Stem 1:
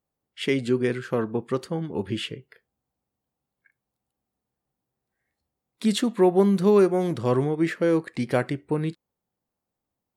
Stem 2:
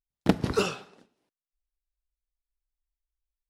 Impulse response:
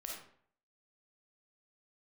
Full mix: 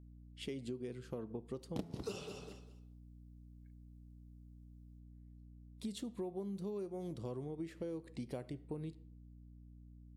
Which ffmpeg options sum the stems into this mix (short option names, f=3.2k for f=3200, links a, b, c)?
-filter_complex "[0:a]volume=-12.5dB,asplit=2[a][b];[b]volume=-17dB[c];[1:a]bandreject=f=84.9:t=h:w=4,bandreject=f=169.8:t=h:w=4,bandreject=f=254.7:t=h:w=4,bandreject=f=339.6:t=h:w=4,bandreject=f=424.5:t=h:w=4,bandreject=f=509.4:t=h:w=4,bandreject=f=594.3:t=h:w=4,bandreject=f=679.2:t=h:w=4,bandreject=f=764.1:t=h:w=4,bandreject=f=849:t=h:w=4,bandreject=f=933.9:t=h:w=4,bandreject=f=1.0188k:t=h:w=4,bandreject=f=1.1037k:t=h:w=4,bandreject=f=1.1886k:t=h:w=4,bandreject=f=1.2735k:t=h:w=4,bandreject=f=1.3584k:t=h:w=4,bandreject=f=1.4433k:t=h:w=4,bandreject=f=1.5282k:t=h:w=4,bandreject=f=1.6131k:t=h:w=4,bandreject=f=1.698k:t=h:w=4,bandreject=f=1.7829k:t=h:w=4,bandreject=f=1.8678k:t=h:w=4,bandreject=f=1.9527k:t=h:w=4,bandreject=f=2.0376k:t=h:w=4,bandreject=f=2.1225k:t=h:w=4,bandreject=f=2.2074k:t=h:w=4,bandreject=f=2.2923k:t=h:w=4,bandreject=f=2.3772k:t=h:w=4,adelay=1500,volume=1.5dB,asplit=2[d][e];[e]volume=-15.5dB[f];[2:a]atrim=start_sample=2205[g];[c][g]afir=irnorm=-1:irlink=0[h];[f]aecho=0:1:201|402|603:1|0.2|0.04[i];[a][d][h][i]amix=inputs=4:normalize=0,equalizer=f=1.6k:w=1.1:g=-12.5,aeval=exprs='val(0)+0.00178*(sin(2*PI*60*n/s)+sin(2*PI*2*60*n/s)/2+sin(2*PI*3*60*n/s)/3+sin(2*PI*4*60*n/s)/4+sin(2*PI*5*60*n/s)/5)':c=same,acompressor=threshold=-39dB:ratio=8"